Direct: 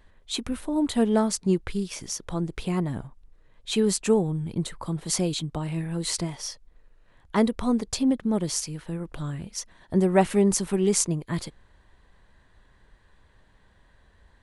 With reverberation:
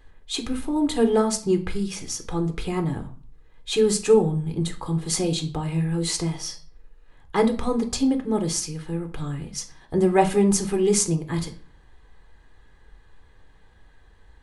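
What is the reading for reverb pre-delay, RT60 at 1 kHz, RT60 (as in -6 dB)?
6 ms, 0.45 s, 0.45 s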